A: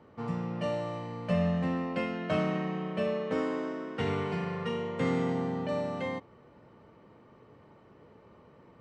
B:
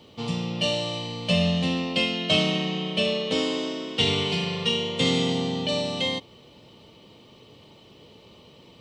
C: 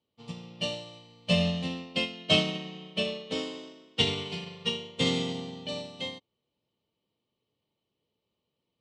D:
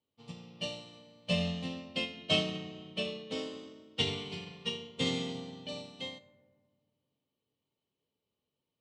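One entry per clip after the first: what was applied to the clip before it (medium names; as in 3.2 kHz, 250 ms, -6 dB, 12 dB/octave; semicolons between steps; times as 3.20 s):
resonant high shelf 2.3 kHz +13 dB, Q 3; trim +5 dB
upward expansion 2.5:1, over -40 dBFS
reverberation RT60 1.7 s, pre-delay 4 ms, DRR 10.5 dB; trim -5.5 dB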